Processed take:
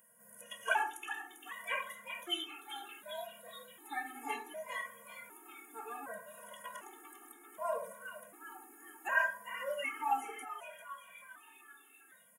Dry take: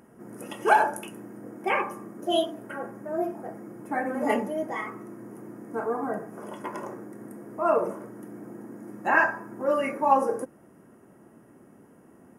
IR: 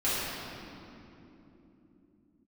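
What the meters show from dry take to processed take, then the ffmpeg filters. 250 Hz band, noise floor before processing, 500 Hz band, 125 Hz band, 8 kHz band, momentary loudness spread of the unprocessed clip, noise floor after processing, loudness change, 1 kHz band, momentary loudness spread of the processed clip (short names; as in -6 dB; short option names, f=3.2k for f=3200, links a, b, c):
-22.5 dB, -55 dBFS, -16.5 dB, under -25 dB, -2.5 dB, 20 LU, -62 dBFS, -12.0 dB, -12.0 dB, 20 LU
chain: -filter_complex "[0:a]aderivative,acrossover=split=6000[a][b];[a]asuperstop=centerf=4600:order=8:qfactor=2[c];[b]acompressor=threshold=-60dB:ratio=6[d];[c][d]amix=inputs=2:normalize=0,asplit=8[e][f][g][h][i][j][k][l];[f]adelay=396,afreqshift=150,volume=-10dB[m];[g]adelay=792,afreqshift=300,volume=-14.6dB[n];[h]adelay=1188,afreqshift=450,volume=-19.2dB[o];[i]adelay=1584,afreqshift=600,volume=-23.7dB[p];[j]adelay=1980,afreqshift=750,volume=-28.3dB[q];[k]adelay=2376,afreqshift=900,volume=-32.9dB[r];[l]adelay=2772,afreqshift=1050,volume=-37.5dB[s];[e][m][n][o][p][q][r][s]amix=inputs=8:normalize=0,afftfilt=real='re*gt(sin(2*PI*0.66*pts/sr)*(1-2*mod(floor(b*sr/1024/230),2)),0)':imag='im*gt(sin(2*PI*0.66*pts/sr)*(1-2*mod(floor(b*sr/1024/230),2)),0)':win_size=1024:overlap=0.75,volume=8dB"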